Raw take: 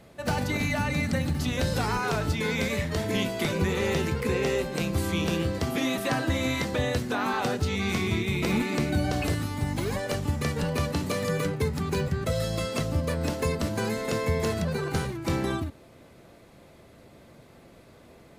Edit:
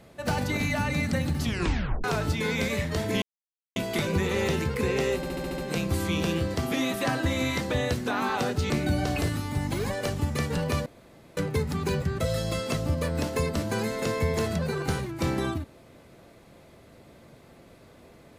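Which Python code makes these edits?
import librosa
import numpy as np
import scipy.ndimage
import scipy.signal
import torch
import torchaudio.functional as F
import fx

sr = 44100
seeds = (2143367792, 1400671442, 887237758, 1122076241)

y = fx.edit(x, sr, fx.tape_stop(start_s=1.43, length_s=0.61),
    fx.insert_silence(at_s=3.22, length_s=0.54),
    fx.stutter(start_s=4.62, slice_s=0.07, count=7),
    fx.cut(start_s=7.74, length_s=1.02),
    fx.room_tone_fill(start_s=10.92, length_s=0.51), tone=tone)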